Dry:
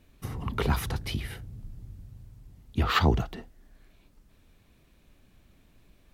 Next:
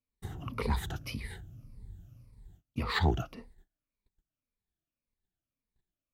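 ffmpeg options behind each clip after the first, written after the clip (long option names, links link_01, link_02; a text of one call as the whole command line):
ffmpeg -i in.wav -af "afftfilt=real='re*pow(10,13/40*sin(2*PI*(0.92*log(max(b,1)*sr/1024/100)/log(2)-(-1.8)*(pts-256)/sr)))':imag='im*pow(10,13/40*sin(2*PI*(0.92*log(max(b,1)*sr/1024/100)/log(2)-(-1.8)*(pts-256)/sr)))':win_size=1024:overlap=0.75,agate=range=-27dB:threshold=-48dB:ratio=16:detection=peak,aeval=exprs='clip(val(0),-1,0.2)':channel_layout=same,volume=-7.5dB" out.wav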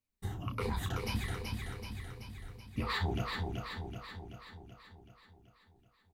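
ffmpeg -i in.wav -filter_complex "[0:a]asplit=2[link_01][link_02];[link_02]aecho=0:1:10|32:0.473|0.376[link_03];[link_01][link_03]amix=inputs=2:normalize=0,alimiter=level_in=1dB:limit=-24dB:level=0:latency=1:release=196,volume=-1dB,asplit=2[link_04][link_05];[link_05]aecho=0:1:380|760|1140|1520|1900|2280|2660|3040:0.631|0.366|0.212|0.123|0.0714|0.0414|0.024|0.0139[link_06];[link_04][link_06]amix=inputs=2:normalize=0" out.wav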